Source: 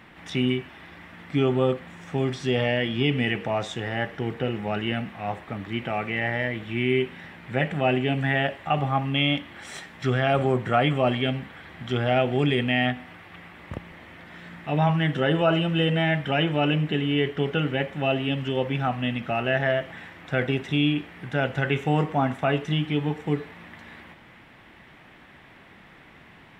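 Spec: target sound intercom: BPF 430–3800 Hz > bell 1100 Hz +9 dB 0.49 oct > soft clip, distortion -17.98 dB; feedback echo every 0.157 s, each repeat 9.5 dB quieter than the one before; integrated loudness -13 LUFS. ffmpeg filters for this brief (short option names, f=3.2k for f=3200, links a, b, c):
-af "highpass=430,lowpass=3.8k,equalizer=f=1.1k:t=o:w=0.49:g=9,aecho=1:1:157|314|471|628:0.335|0.111|0.0365|0.012,asoftclip=threshold=-15dB,volume=15dB"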